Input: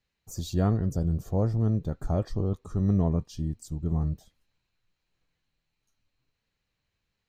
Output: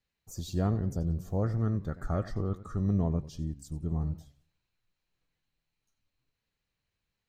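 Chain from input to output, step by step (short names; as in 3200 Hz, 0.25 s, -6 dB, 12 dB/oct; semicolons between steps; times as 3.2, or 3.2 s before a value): spectral gain 1.43–2.77, 1100–2200 Hz +10 dB; warbling echo 92 ms, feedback 31%, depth 212 cents, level -16.5 dB; gain -4 dB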